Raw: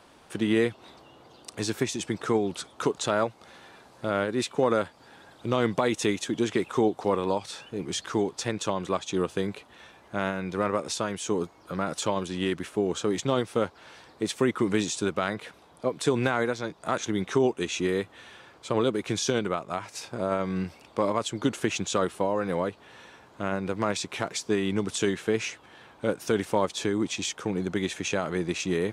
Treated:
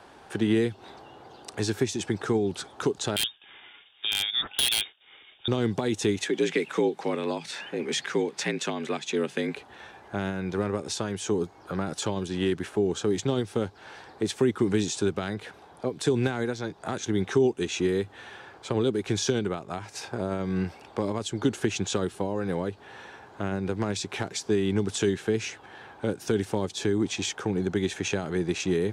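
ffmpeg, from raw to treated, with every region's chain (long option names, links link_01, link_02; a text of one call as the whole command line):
ffmpeg -i in.wav -filter_complex "[0:a]asettb=1/sr,asplit=3[link_01][link_02][link_03];[link_01]atrim=end=3.164[link_04];[link_02]atrim=start=3.16:end=5.48,asetpts=PTS-STARTPTS,afade=type=in:duration=0.004:curve=qsin,afade=type=out:start_time=2.316:duration=0.004:curve=qsin,agate=range=-33dB:threshold=-49dB:ratio=3:release=100:detection=peak,lowpass=frequency=3200:width_type=q:width=0.5098,lowpass=frequency=3200:width_type=q:width=0.6013,lowpass=frequency=3200:width_type=q:width=0.9,lowpass=frequency=3200:width_type=q:width=2.563,afreqshift=-3800,aeval=exprs='(mod(5.96*val(0)+1,2)-1)/5.96':channel_layout=same[link_05];[link_03]atrim=start=5.476[link_06];[link_04][link_05]acrossfade=duration=0.004:curve1=hsin:curve2=qsin[link_07];[link_07][link_06]acrossfade=duration=0.004:curve1=qsin:curve2=hsin,asettb=1/sr,asplit=3[link_08][link_09][link_10];[link_08]atrim=end=6.184[link_11];[link_09]atrim=start=6.18:end=9.56,asetpts=PTS-STARTPTS,afade=type=in:duration=0.004:curve=qsin,afade=type=out:start_time=3.376:duration=0.004:curve=qsin,equalizer=frequency=2100:width=1.7:gain=12,afreqshift=60[link_12];[link_10]atrim=start=9.556[link_13];[link_11][link_12]acrossfade=duration=0.004:curve1=hsin:curve2=qsin[link_14];[link_14][link_13]acrossfade=duration=0.004:curve1=qsin:curve2=hsin,equalizer=frequency=100:width_type=o:width=0.33:gain=5,equalizer=frequency=400:width_type=o:width=0.33:gain=6,equalizer=frequency=800:width_type=o:width=0.33:gain=8,equalizer=frequency=1600:width_type=o:width=0.33:gain=6,acrossover=split=360|3000[link_15][link_16][link_17];[link_16]acompressor=threshold=-35dB:ratio=6[link_18];[link_15][link_18][link_17]amix=inputs=3:normalize=0,highshelf=frequency=9700:gain=-7,volume=1.5dB" out.wav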